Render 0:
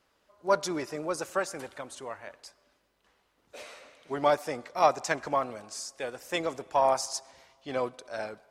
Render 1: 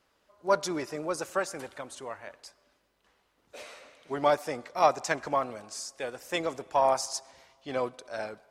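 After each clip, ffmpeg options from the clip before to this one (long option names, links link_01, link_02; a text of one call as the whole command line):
ffmpeg -i in.wav -af anull out.wav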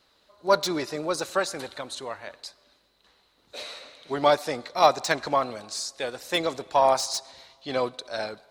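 ffmpeg -i in.wav -filter_complex "[0:a]equalizer=frequency=4000:width=3.9:gain=14.5,acrossover=split=2700[link_01][link_02];[link_02]asoftclip=type=hard:threshold=-28.5dB[link_03];[link_01][link_03]amix=inputs=2:normalize=0,volume=4dB" out.wav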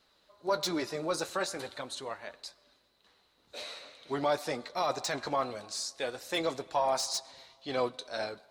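ffmpeg -i in.wav -af "alimiter=limit=-16dB:level=0:latency=1:release=10,flanger=delay=4.3:depth=8.7:regen=-53:speed=0.43:shape=triangular" out.wav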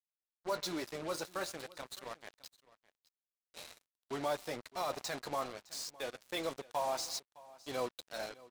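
ffmpeg -i in.wav -af "acrusher=bits=5:mix=0:aa=0.5,aecho=1:1:611:0.0891,volume=-6.5dB" out.wav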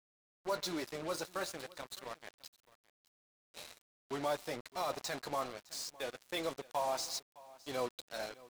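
ffmpeg -i in.wav -af "aeval=exprs='val(0)*gte(abs(val(0)),0.00106)':channel_layout=same" out.wav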